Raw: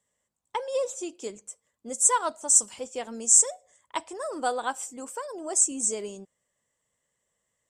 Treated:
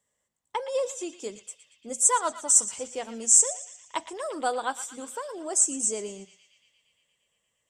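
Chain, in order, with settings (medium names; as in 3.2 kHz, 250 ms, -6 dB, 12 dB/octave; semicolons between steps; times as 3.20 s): hum notches 60/120/180/240 Hz; on a send: band-passed feedback delay 116 ms, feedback 81%, band-pass 2.9 kHz, level -11 dB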